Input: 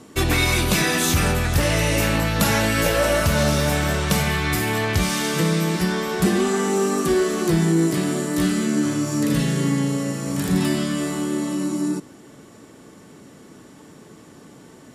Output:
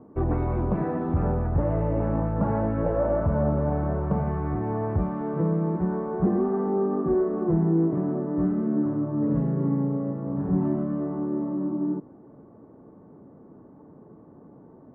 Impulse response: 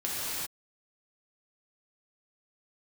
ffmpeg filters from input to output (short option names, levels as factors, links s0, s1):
-af "lowpass=f=1000:w=0.5412,lowpass=f=1000:w=1.3066,volume=0.668"